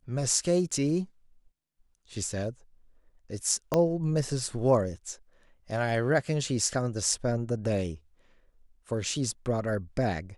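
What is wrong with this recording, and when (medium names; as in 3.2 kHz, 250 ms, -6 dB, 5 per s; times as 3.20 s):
3.74 s: pop -12 dBFS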